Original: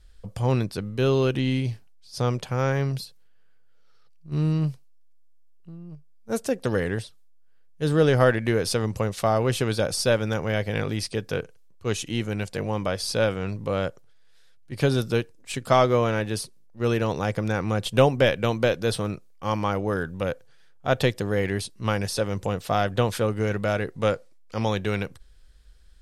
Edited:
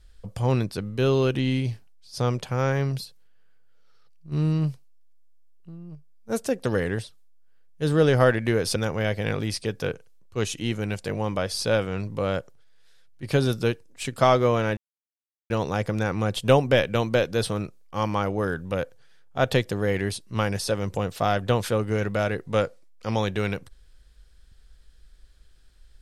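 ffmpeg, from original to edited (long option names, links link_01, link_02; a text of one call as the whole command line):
ffmpeg -i in.wav -filter_complex "[0:a]asplit=4[link_01][link_02][link_03][link_04];[link_01]atrim=end=8.762[link_05];[link_02]atrim=start=10.248:end=16.26,asetpts=PTS-STARTPTS,afade=type=out:start_time=6.008:duration=0.004:curve=hsin[link_06];[link_03]atrim=start=16.26:end=16.99,asetpts=PTS-STARTPTS,volume=0[link_07];[link_04]atrim=start=16.99,asetpts=PTS-STARTPTS,afade=type=in:duration=0.004:curve=hsin[link_08];[link_06][link_07][link_08]concat=n=3:v=0:a=1[link_09];[link_05][link_09]acrossfade=duration=0.004:curve1=hsin:curve2=hsin" out.wav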